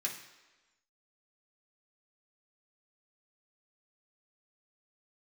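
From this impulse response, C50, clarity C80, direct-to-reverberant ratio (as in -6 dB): 7.0 dB, 10.0 dB, -2.0 dB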